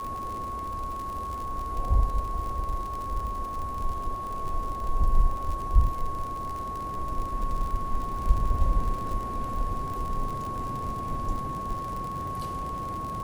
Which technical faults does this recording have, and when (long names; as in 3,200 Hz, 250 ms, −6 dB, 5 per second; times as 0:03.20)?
surface crackle 59 per second −32 dBFS
whistle 1,100 Hz −32 dBFS